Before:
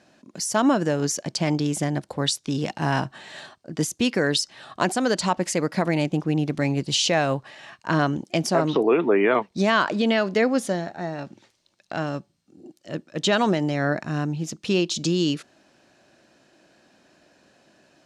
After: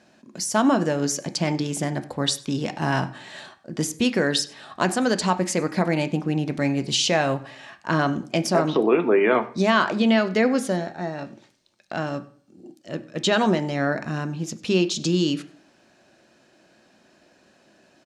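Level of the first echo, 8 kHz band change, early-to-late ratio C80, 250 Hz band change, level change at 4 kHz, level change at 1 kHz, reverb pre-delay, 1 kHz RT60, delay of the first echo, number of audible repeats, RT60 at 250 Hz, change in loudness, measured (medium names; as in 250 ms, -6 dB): -23.0 dB, 0.0 dB, 19.0 dB, +1.0 dB, 0.0 dB, +0.5 dB, 3 ms, 0.50 s, 97 ms, 1, 0.60 s, +0.5 dB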